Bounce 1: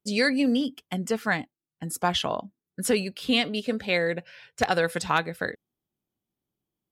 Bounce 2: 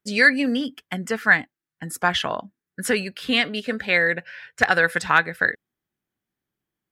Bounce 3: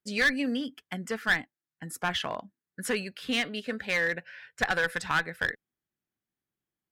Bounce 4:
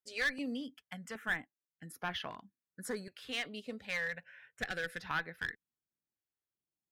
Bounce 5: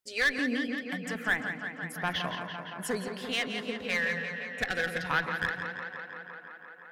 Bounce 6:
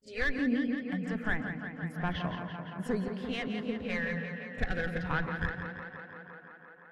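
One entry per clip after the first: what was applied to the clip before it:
bell 1700 Hz +12.5 dB 0.88 oct
one-sided clip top -15.5 dBFS; gain -7 dB
stepped notch 2.6 Hz 200–7800 Hz; gain -8.5 dB
tape echo 0.171 s, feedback 85%, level -7 dB, low-pass 5100 Hz; on a send at -13.5 dB: reverb RT60 0.45 s, pre-delay 0.123 s; on the sum: gain +6.5 dB
RIAA curve playback; pre-echo 37 ms -15 dB; gain -4 dB

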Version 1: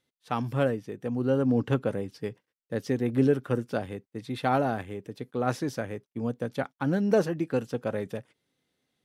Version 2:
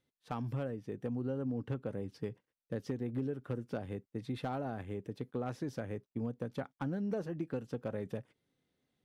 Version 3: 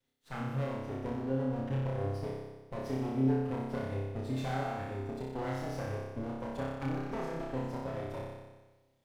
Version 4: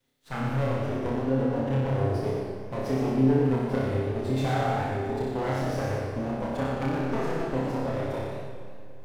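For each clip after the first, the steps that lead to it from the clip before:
tilt -1.5 dB/oct; compressor 6:1, threshold -29 dBFS, peak gain reduction 13.5 dB; hard clip -22.5 dBFS, distortion -25 dB; gain -4.5 dB
minimum comb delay 7.5 ms; on a send: flutter echo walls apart 5.2 m, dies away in 1.2 s
on a send at -8.5 dB: reverb RT60 3.1 s, pre-delay 20 ms; on the sum: warbling echo 0.111 s, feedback 49%, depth 166 cents, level -7 dB; gain +7 dB

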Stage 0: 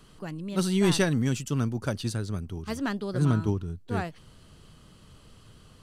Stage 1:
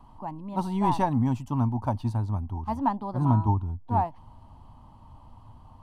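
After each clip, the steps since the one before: EQ curve 110 Hz 0 dB, 170 Hz -11 dB, 250 Hz -1 dB, 440 Hz -17 dB, 920 Hz +13 dB, 1400 Hz -16 dB, 2100 Hz -16 dB, 7700 Hz -24 dB, 14000 Hz -17 dB; gain +5 dB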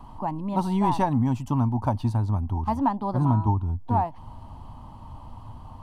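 compressor 2:1, threshold -32 dBFS, peak gain reduction 8.5 dB; gain +8 dB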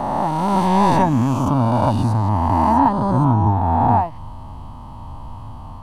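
spectral swells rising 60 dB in 2.53 s; gain +4 dB

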